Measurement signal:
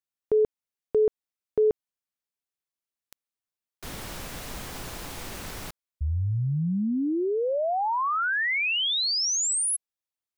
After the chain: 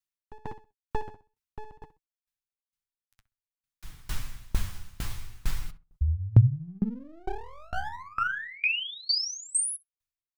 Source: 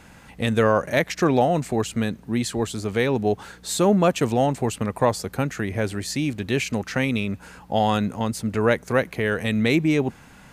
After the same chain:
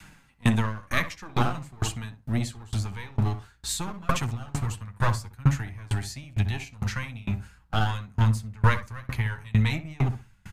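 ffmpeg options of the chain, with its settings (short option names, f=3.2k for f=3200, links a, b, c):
-filter_complex "[0:a]adynamicequalizer=threshold=0.0178:dfrequency=470:dqfactor=2.6:tfrequency=470:tqfactor=2.6:attack=5:release=100:ratio=0.375:range=2:mode=cutabove:tftype=bell,asplit=2[a][b];[b]adelay=64,lowpass=f=1.2k:p=1,volume=-5.5dB,asplit=2[c][d];[d]adelay=64,lowpass=f=1.2k:p=1,volume=0.34,asplit=2[e][f];[f]adelay=64,lowpass=f=1.2k:p=1,volume=0.34,asplit=2[g][h];[h]adelay=64,lowpass=f=1.2k:p=1,volume=0.34[i];[a][c][e][g][i]amix=inputs=5:normalize=0,asubboost=boost=7:cutoff=90,flanger=delay=6.1:depth=4.8:regen=38:speed=0.52:shape=triangular,acrossover=split=310|880|2800[j][k][l][m];[k]aeval=exprs='abs(val(0))':c=same[n];[j][n][l][m]amix=inputs=4:normalize=0,aeval=exprs='val(0)*pow(10,-28*if(lt(mod(2.2*n/s,1),2*abs(2.2)/1000),1-mod(2.2*n/s,1)/(2*abs(2.2)/1000),(mod(2.2*n/s,1)-2*abs(2.2)/1000)/(1-2*abs(2.2)/1000))/20)':c=same,volume=7dB"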